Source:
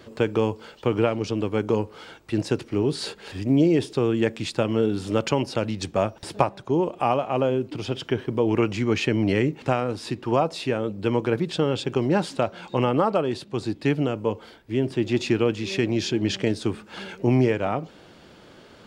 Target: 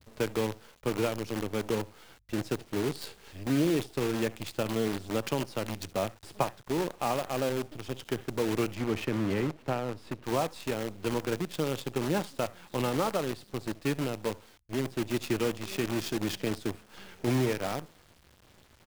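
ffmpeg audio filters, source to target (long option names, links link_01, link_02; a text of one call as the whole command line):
ffmpeg -i in.wav -filter_complex "[0:a]aecho=1:1:72:0.133,agate=range=-33dB:threshold=-46dB:ratio=3:detection=peak,acrossover=split=100[link_01][link_02];[link_01]acompressor=mode=upward:threshold=-47dB:ratio=2.5[link_03];[link_02]acrusher=bits=5:dc=4:mix=0:aa=0.000001[link_04];[link_03][link_04]amix=inputs=2:normalize=0,asettb=1/sr,asplit=3[link_05][link_06][link_07];[link_05]atrim=end=8.754[link_08];[link_06]atrim=start=8.75:end=10.24,asetpts=PTS-STARTPTS,afade=type=in:duration=0.004:curve=qsin,afade=type=out:start_time=1.486:duration=0.004:curve=qsin,highshelf=frequency=4000:gain=-10.5[link_09];[link_07]atrim=start=10.236[link_10];[link_08][link_09]acrossfade=duration=0.004:curve1=hsin:curve2=qsin[link_11];[link_11][link_10]acrossfade=duration=0.004:curve1=qsin:curve2=hsin,volume=-8dB" out.wav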